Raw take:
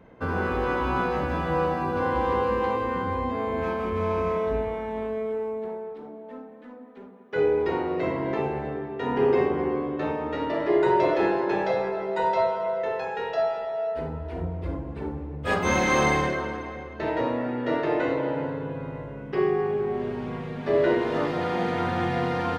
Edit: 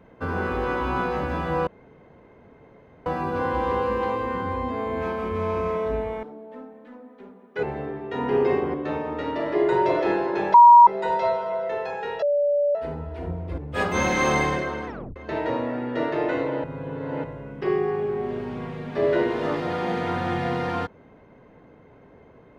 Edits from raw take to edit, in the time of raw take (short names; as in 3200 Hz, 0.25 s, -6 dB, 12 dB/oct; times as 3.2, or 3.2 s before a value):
1.67 insert room tone 1.39 s
4.84–6 cut
7.4–8.51 cut
9.62–9.88 cut
11.68–12.01 bleep 954 Hz -6.5 dBFS
13.36–13.89 bleep 579 Hz -18 dBFS
14.72–15.29 cut
16.58 tape stop 0.29 s
18.35–18.95 reverse